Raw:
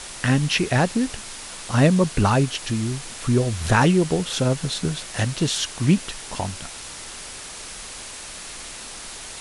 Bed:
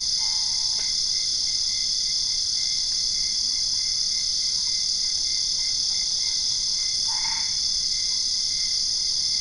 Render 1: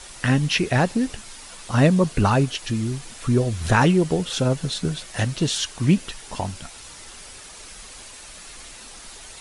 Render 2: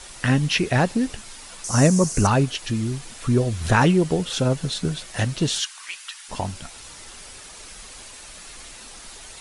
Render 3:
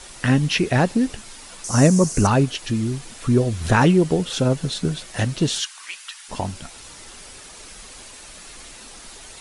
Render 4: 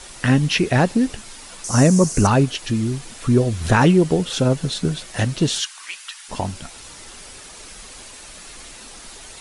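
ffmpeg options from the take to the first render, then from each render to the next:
-af "afftdn=nr=7:nf=-37"
-filter_complex "[0:a]asettb=1/sr,asplit=3[a][b][c];[a]atrim=end=1.644[d];[b]atrim=start=1.64:end=2.27,asetpts=PTS-STARTPTS,afade=t=in:d=0.004:c=qsin,afade=t=out:st=0.626:d=0.004:c=qsin,highshelf=f=4.7k:t=q:w=3:g=9.5[e];[c]atrim=start=2.266[f];[d][e]acrossfade=d=0.004:c1=hsin:c2=qsin[g];[g][f]acrossfade=d=0.004:c1=qsin:c2=hsin,asplit=3[h][i][j];[h]afade=t=out:st=5.59:d=0.02[k];[i]highpass=f=1.1k:w=0.5412,highpass=f=1.1k:w=1.3066,afade=t=in:st=5.59:d=0.02,afade=t=out:st=6.28:d=0.02[l];[j]afade=t=in:st=6.28:d=0.02[m];[k][l][m]amix=inputs=3:normalize=0"
-af "equalizer=f=290:t=o:w=1.9:g=3"
-af "volume=1.5dB,alimiter=limit=-3dB:level=0:latency=1"

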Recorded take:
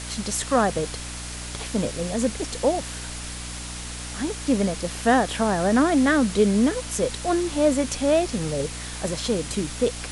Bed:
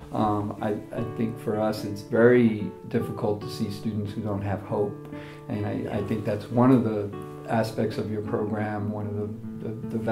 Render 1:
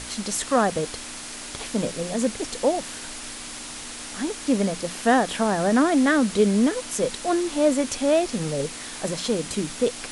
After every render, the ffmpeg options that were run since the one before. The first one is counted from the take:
-af "bandreject=f=60:t=h:w=6,bandreject=f=120:t=h:w=6,bandreject=f=180:t=h:w=6"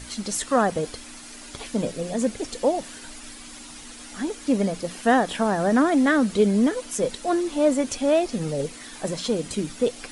-af "afftdn=nr=9:nf=-37"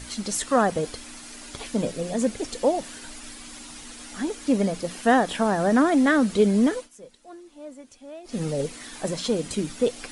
-filter_complex "[0:a]asplit=3[a][b][c];[a]atrim=end=6.89,asetpts=PTS-STARTPTS,afade=t=out:st=6.74:d=0.15:silence=0.0891251[d];[b]atrim=start=6.89:end=8.24,asetpts=PTS-STARTPTS,volume=-21dB[e];[c]atrim=start=8.24,asetpts=PTS-STARTPTS,afade=t=in:d=0.15:silence=0.0891251[f];[d][e][f]concat=n=3:v=0:a=1"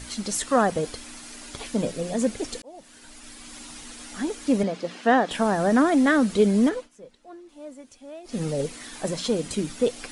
-filter_complex "[0:a]asettb=1/sr,asplit=3[a][b][c];[a]atrim=end=4.634[d];[b]atrim=start=4.63:end=5.31,asetpts=PTS-STARTPTS,afade=t=in:d=0.004:c=qsin,afade=t=out:st=0.676:d=0.004:c=qsin,highpass=200,lowpass=4.5k[e];[c]atrim=start=5.306[f];[d][e]acrossfade=d=0.004:c1=hsin:c2=qsin[g];[g][f]acrossfade=d=0.004:c1=qsin:c2=hsin,asettb=1/sr,asplit=3[h][i][j];[h]atrim=end=6.694[k];[i]atrim=start=6.69:end=7.49,asetpts=PTS-STARTPTS,afade=t=in:d=0.004:c=qsin,afade=t=out:st=0.796:d=0.004:c=qsin,aemphasis=mode=reproduction:type=50kf[l];[j]atrim=start=7.486[m];[k][l]acrossfade=d=0.004:c1=hsin:c2=qsin[n];[n][m]acrossfade=d=0.004:c1=qsin:c2=hsin,asplit=2[o][p];[o]atrim=end=2.62,asetpts=PTS-STARTPTS,afade=t=out:st=2.616:d=0.004:c=hsin[q];[p]atrim=start=2.62,asetpts=PTS-STARTPTS,afade=t=in:d=1[r];[q][r]concat=n=2:v=0:a=1"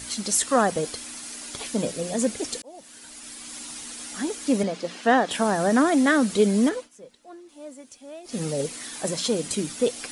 -af "highpass=f=110:p=1,highshelf=f=4.9k:g=8"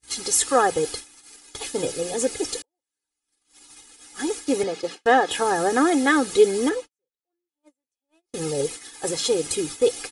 -af "agate=range=-44dB:threshold=-35dB:ratio=16:detection=peak,aecho=1:1:2.4:0.83"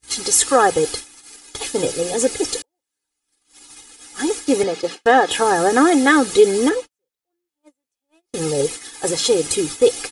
-af "volume=5.5dB,alimiter=limit=-3dB:level=0:latency=1"

